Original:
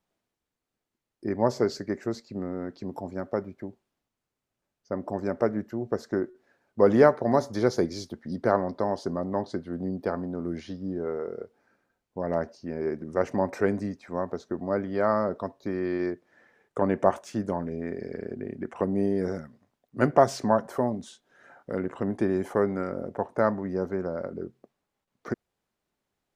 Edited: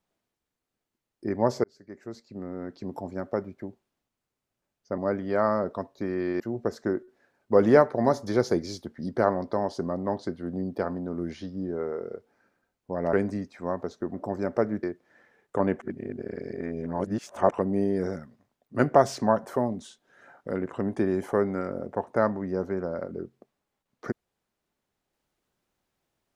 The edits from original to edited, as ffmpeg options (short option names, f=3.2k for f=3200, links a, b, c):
-filter_complex "[0:a]asplit=9[a][b][c][d][e][f][g][h][i];[a]atrim=end=1.64,asetpts=PTS-STARTPTS,afade=t=out:st=1.636:d=0.004:c=hsin[j];[b]atrim=start=1.64:end=4.982,asetpts=PTS-STARTPTS,afade=t=in:d=1.26[k];[c]atrim=start=14.628:end=16.052[l];[d]atrim=start=5.668:end=12.402[m];[e]atrim=start=13.618:end=14.632[n];[f]atrim=start=4.978:end=5.672[o];[g]atrim=start=16.048:end=17.012[p];[h]atrim=start=17.008:end=18.742,asetpts=PTS-STARTPTS,areverse[q];[i]atrim=start=18.738[r];[j][k]concat=n=2:v=0:a=1[s];[s][l]acrossfade=d=0.004:c1=hsin:c2=hsin[t];[t][m]acrossfade=d=0.004:c1=hsin:c2=hsin[u];[u][n]acrossfade=d=0.004:c1=hsin:c2=hsin[v];[v][o]acrossfade=d=0.004:c1=hsin:c2=hsin[w];[w][p]acrossfade=d=0.004:c1=hsin:c2=hsin[x];[x][q]acrossfade=d=0.004:c1=hsin:c2=hsin[y];[y][r]acrossfade=d=0.004:c1=hsin:c2=hsin"